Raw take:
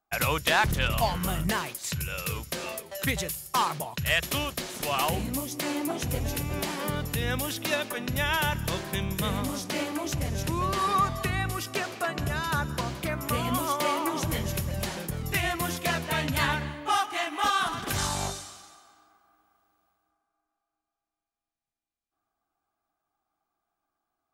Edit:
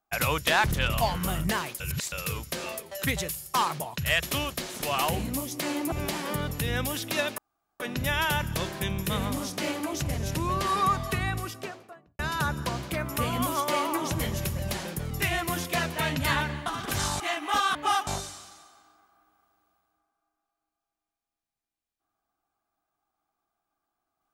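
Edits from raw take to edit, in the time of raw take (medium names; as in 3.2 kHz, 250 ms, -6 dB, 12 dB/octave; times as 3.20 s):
1.80–2.12 s: reverse
5.92–6.46 s: delete
7.92 s: insert room tone 0.42 s
11.31–12.31 s: studio fade out
16.78–17.10 s: swap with 17.65–18.19 s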